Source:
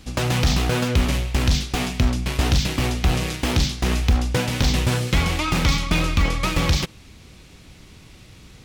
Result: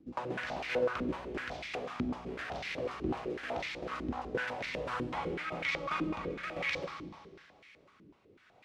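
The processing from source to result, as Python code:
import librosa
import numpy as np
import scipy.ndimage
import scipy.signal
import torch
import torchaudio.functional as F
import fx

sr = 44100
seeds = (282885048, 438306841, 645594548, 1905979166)

y = fx.rotary_switch(x, sr, hz=5.0, then_hz=1.1, switch_at_s=3.92)
y = fx.rev_schroeder(y, sr, rt60_s=2.0, comb_ms=30, drr_db=2.0)
y = fx.filter_held_bandpass(y, sr, hz=8.0, low_hz=310.0, high_hz=2100.0)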